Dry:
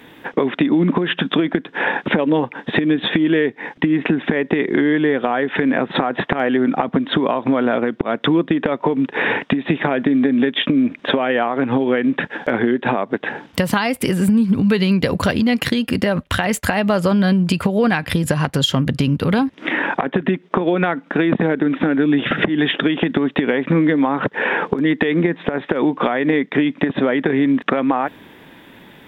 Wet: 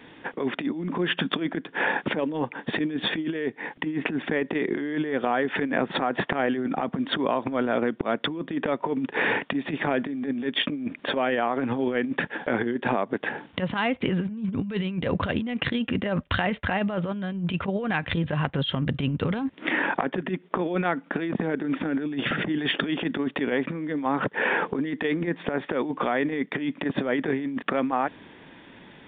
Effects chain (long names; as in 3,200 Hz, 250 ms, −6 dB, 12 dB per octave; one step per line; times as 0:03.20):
0:17.69–0:19.35: parametric band 230 Hz −2 dB 1 octave
compressor whose output falls as the input rises −18 dBFS, ratio −0.5
downsampling to 8,000 Hz
level −7 dB